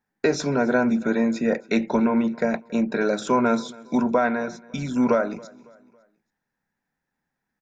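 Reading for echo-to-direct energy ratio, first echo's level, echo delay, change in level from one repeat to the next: -22.0 dB, -23.0 dB, 0.277 s, -7.5 dB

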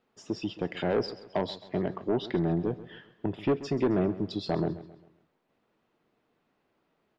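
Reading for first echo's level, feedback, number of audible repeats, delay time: -16.0 dB, 42%, 3, 0.133 s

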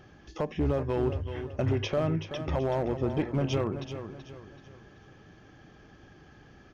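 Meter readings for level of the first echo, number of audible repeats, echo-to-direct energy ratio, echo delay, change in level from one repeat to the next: -10.0 dB, 3, -9.5 dB, 0.38 s, -8.5 dB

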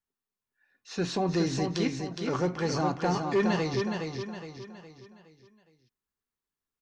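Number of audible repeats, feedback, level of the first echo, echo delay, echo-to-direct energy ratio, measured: 4, 42%, -5.0 dB, 0.415 s, -4.0 dB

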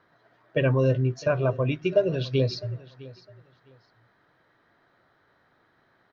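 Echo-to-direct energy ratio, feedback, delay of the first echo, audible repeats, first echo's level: -20.0 dB, 22%, 0.657 s, 2, -20.0 dB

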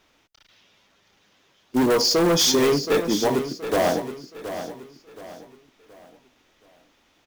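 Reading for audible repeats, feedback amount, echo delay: 3, 36%, 0.723 s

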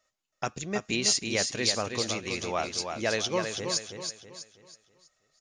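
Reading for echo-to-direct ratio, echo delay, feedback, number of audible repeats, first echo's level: -5.5 dB, 0.324 s, 38%, 4, -6.0 dB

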